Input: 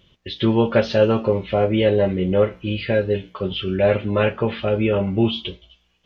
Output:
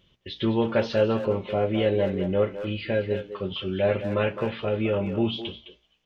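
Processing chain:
mains-hum notches 60/120 Hz
far-end echo of a speakerphone 210 ms, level −9 dB
level −6 dB

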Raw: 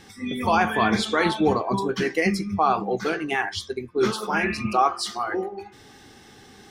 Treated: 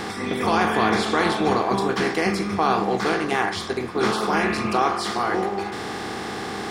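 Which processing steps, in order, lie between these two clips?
compressor on every frequency bin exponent 0.4
level −5 dB

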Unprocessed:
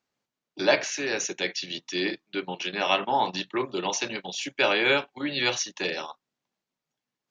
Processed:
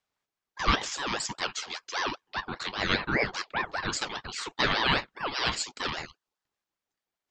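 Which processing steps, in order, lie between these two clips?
time-frequency box erased 0:06.05–0:06.45, 680–1,400 Hz
ring modulator whose carrier an LFO sweeps 990 Hz, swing 45%, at 5 Hz

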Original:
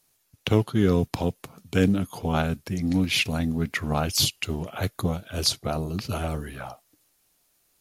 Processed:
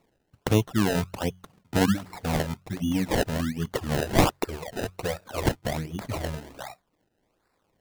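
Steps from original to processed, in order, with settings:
notch filter 400 Hz, Q 12
hum removal 45.65 Hz, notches 4
reverb reduction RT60 1.6 s
0:04.02–0:05.44: octave-band graphic EQ 125/250/500/2,000/8,000 Hz −8/−12/+8/+3/+8 dB
sample-and-hold swept by an LFO 27×, swing 100% 1.3 Hz

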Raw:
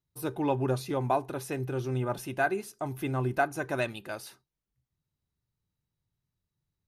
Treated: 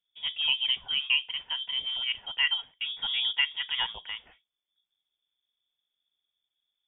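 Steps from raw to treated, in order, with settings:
0:00.47–0:02.54: low shelf with overshoot 230 Hz −13 dB, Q 1.5
voice inversion scrambler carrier 3,500 Hz

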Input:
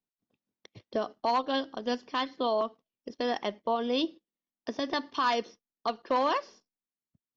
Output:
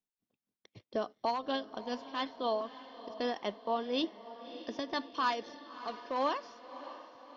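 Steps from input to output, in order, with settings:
amplitude tremolo 4 Hz, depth 53%
feedback delay with all-pass diffusion 606 ms, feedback 53%, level −14 dB
level −3 dB

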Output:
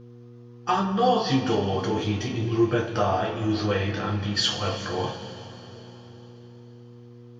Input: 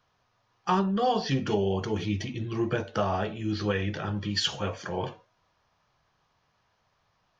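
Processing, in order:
coupled-rooms reverb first 0.28 s, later 3.9 s, from −18 dB, DRR −2 dB
hum with harmonics 120 Hz, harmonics 4, −46 dBFS −4 dB per octave

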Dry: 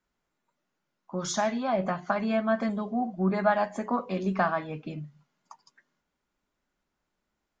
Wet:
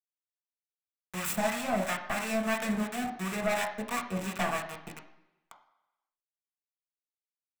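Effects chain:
stylus tracing distortion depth 0.47 ms
low-shelf EQ 420 Hz −3.5 dB
automatic gain control gain up to 15 dB
centre clipping without the shift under −21 dBFS
two-band tremolo in antiphase 2.9 Hz, depth 70%, crossover 920 Hz
soft clipping −10 dBFS, distortion −16 dB
convolution reverb RT60 1.0 s, pre-delay 3 ms, DRR 1.5 dB
level −7 dB

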